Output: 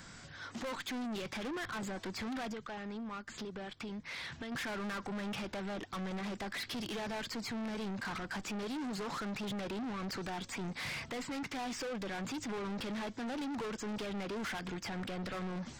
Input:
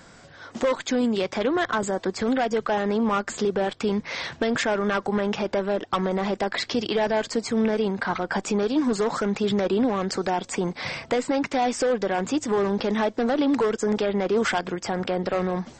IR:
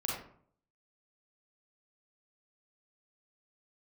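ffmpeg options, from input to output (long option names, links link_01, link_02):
-filter_complex "[0:a]acrossover=split=5000[link_01][link_02];[link_02]acompressor=threshold=-52dB:ratio=4:attack=1:release=60[link_03];[link_01][link_03]amix=inputs=2:normalize=0,equalizer=frequency=540:width=0.79:gain=-10,asettb=1/sr,asplit=3[link_04][link_05][link_06];[link_04]atrim=end=2.514[link_07];[link_05]atrim=start=2.51:end=4.52,asetpts=PTS-STARTPTS,afade=type=in:duration=0.004:curve=qsin,afade=type=out:start_time=2.006:duration=0.004:curve=qsin,acompressor=threshold=-37dB:ratio=12[link_08];[link_06]atrim=start=4.516[link_09];[link_07][link_08]acrossfade=duration=0.004:curve1=hsin:curve2=qsin[link_10];[link_10][link_09]acrossfade=duration=0.004:curve1=qsin:curve2=hsin,alimiter=limit=-22.5dB:level=0:latency=1:release=11,asoftclip=type=tanh:threshold=-37dB"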